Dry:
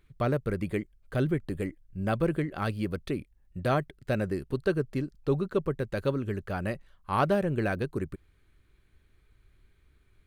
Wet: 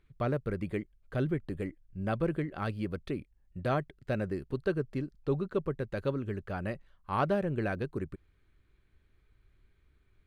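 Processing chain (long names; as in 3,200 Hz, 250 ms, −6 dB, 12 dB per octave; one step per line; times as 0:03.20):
high-shelf EQ 6,700 Hz −10.5 dB
level −3.5 dB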